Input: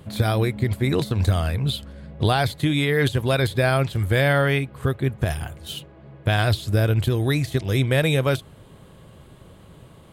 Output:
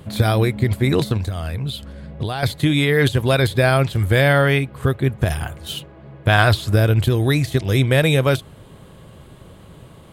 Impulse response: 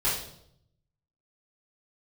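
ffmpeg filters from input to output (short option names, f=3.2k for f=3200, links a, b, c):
-filter_complex "[0:a]asettb=1/sr,asplit=3[a][b][c];[a]atrim=end=1.174[d];[b]atrim=start=1.17:end=2.43,asetpts=PTS-STARTPTS,afade=t=in:d=0.004:c=qsin,afade=t=out:st=1.256:d=0.004:c=qsin,acompressor=threshold=-26dB:ratio=6[e];[c]atrim=start=2.426[f];[d][e]acrossfade=d=0.004:c1=hsin:c2=qsin[g];[g][f]acrossfade=d=0.004:c1=qsin:c2=hsin,asettb=1/sr,asplit=3[h][i][j];[h]atrim=end=5.294[k];[i]atrim=start=5.29:end=6.76,asetpts=PTS-STARTPTS,afade=t=in:d=0.004:c=qsin,afade=t=out:st=1.466:d=0.004:c=qsin,adynamicequalizer=threshold=0.0126:dfrequency=1200:dqfactor=0.95:tfrequency=1200:tqfactor=0.95:attack=5:release=100:ratio=0.375:range=3.5:mode=boostabove:tftype=bell[l];[j]atrim=start=6.756[m];[k][l]acrossfade=d=0.004:c1=hsin:c2=qsin[n];[n][m]acrossfade=d=0.004:c1=qsin:c2=hsin,volume=4dB"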